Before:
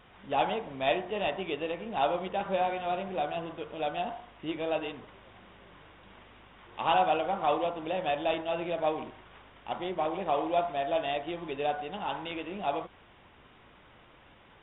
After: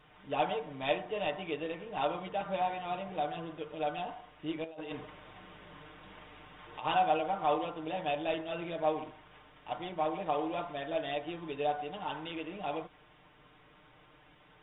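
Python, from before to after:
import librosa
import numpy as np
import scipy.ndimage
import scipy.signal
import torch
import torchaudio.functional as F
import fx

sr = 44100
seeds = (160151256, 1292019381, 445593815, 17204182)

y = x + 0.77 * np.pad(x, (int(6.6 * sr / 1000.0), 0))[:len(x)]
y = fx.over_compress(y, sr, threshold_db=-37.0, ratio=-1.0, at=(4.64, 6.85))
y = y * librosa.db_to_amplitude(-5.5)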